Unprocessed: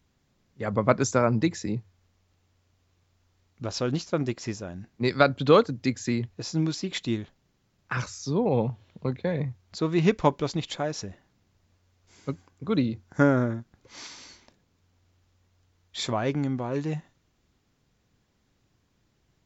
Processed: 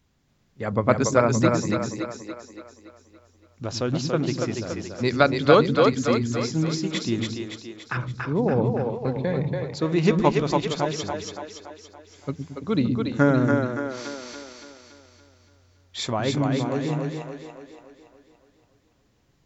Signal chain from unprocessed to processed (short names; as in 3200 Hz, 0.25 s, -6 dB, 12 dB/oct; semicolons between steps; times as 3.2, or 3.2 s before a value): 7.97–8.62 LPF 1400 Hz 12 dB/oct; split-band echo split 300 Hz, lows 0.11 s, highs 0.284 s, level -3 dB; gain +1.5 dB